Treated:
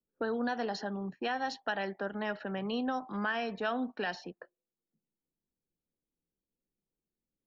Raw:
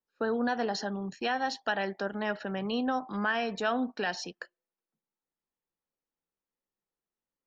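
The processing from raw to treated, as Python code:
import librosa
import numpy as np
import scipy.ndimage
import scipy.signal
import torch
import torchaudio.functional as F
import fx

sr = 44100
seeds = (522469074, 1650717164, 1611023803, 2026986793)

y = fx.env_lowpass(x, sr, base_hz=320.0, full_db=-25.5)
y = fx.band_squash(y, sr, depth_pct=40)
y = y * librosa.db_to_amplitude(-3.5)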